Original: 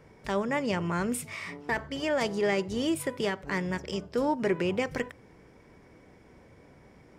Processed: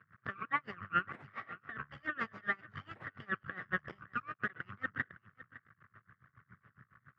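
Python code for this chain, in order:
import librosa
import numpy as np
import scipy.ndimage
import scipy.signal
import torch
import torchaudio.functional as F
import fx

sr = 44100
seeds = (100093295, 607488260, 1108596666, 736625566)

y = fx.spec_quant(x, sr, step_db=15)
y = fx.fixed_phaser(y, sr, hz=650.0, stages=6)
y = fx.cheby_harmonics(y, sr, harmonics=(2,), levels_db=(-24,), full_scale_db=-19.0)
y = fx.brickwall_bandstop(y, sr, low_hz=150.0, high_hz=1100.0)
y = fx.echo_feedback(y, sr, ms=559, feedback_pct=16, wet_db=-18.0)
y = np.maximum(y, 0.0)
y = scipy.signal.sosfilt(scipy.signal.cheby1(3, 1.0, [120.0, 2000.0], 'bandpass', fs=sr, output='sos'), y)
y = y * 10.0 ** (-24 * (0.5 - 0.5 * np.cos(2.0 * np.pi * 7.2 * np.arange(len(y)) / sr)) / 20.0)
y = y * 10.0 ** (16.5 / 20.0)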